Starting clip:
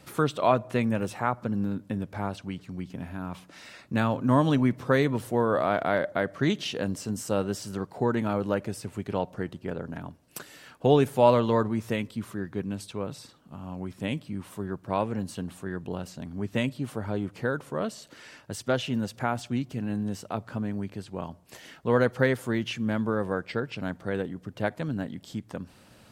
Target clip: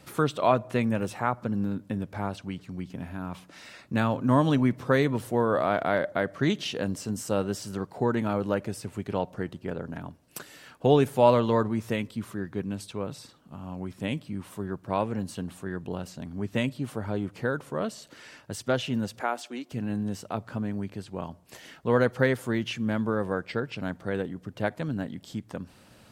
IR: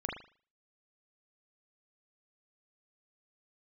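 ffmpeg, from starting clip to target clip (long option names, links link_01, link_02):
-filter_complex "[0:a]asettb=1/sr,asplit=3[link_01][link_02][link_03];[link_01]atrim=end=19.214[link_04];[link_02]atrim=start=19.21:end=19.72,asetpts=PTS-STARTPTS,afade=type=in:duration=0.004:curve=qsin,afade=type=out:start_time=0.506:duration=0.004:curve=qsin,highpass=frequency=310:width=0.5412,highpass=frequency=310:width=1.3066[link_05];[link_03]atrim=start=19.716[link_06];[link_04][link_05]acrossfade=duration=0.004:curve1=hsin:curve2=qsin[link_07];[link_07][link_06]acrossfade=duration=0.004:curve1=qsin:curve2=hsin"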